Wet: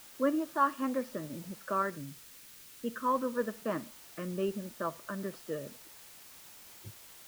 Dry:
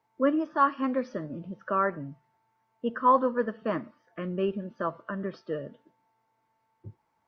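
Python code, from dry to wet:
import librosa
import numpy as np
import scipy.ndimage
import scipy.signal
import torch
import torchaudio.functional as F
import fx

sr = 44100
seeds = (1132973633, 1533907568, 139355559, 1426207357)

p1 = fx.quant_dither(x, sr, seeds[0], bits=6, dither='triangular')
p2 = x + (p1 * 10.0 ** (-10.0 / 20.0))
p3 = fx.peak_eq(p2, sr, hz=760.0, db=-9.0, octaves=0.93, at=(1.82, 3.33))
y = p3 * 10.0 ** (-7.0 / 20.0)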